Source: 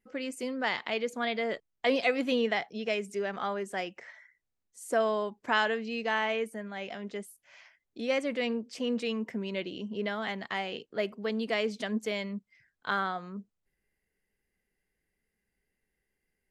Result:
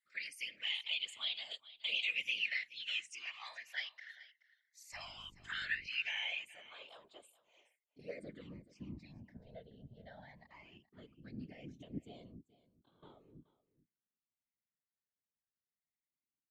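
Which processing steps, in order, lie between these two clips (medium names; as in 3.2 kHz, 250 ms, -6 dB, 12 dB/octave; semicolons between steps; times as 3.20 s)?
pre-emphasis filter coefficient 0.97; comb 3.3 ms, depth 95%; 9.45–9.89 s: tilt EQ -2.5 dB/octave; peak limiter -33.5 dBFS, peak gain reduction 10 dB; 12.25–13.03 s: compression 12:1, threshold -57 dBFS, peak gain reduction 17.5 dB; band-pass sweep 2.6 kHz -> 240 Hz, 5.88–8.81 s; 4.92–5.86 s: mains buzz 50 Hz, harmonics 11, -75 dBFS -4 dB/octave; whisper effect; phase shifter stages 8, 0.18 Hz, lowest notch 320–1900 Hz; delay 427 ms -18.5 dB; loudspeaker Doppler distortion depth 0.14 ms; trim +13 dB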